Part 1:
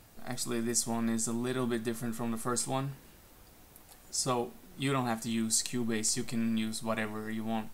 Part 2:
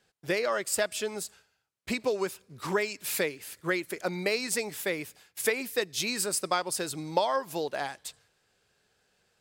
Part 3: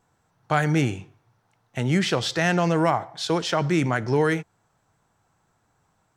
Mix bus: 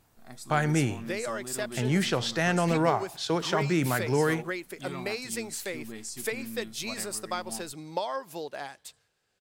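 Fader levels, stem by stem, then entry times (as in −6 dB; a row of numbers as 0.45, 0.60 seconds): −9.0, −5.0, −4.0 decibels; 0.00, 0.80, 0.00 seconds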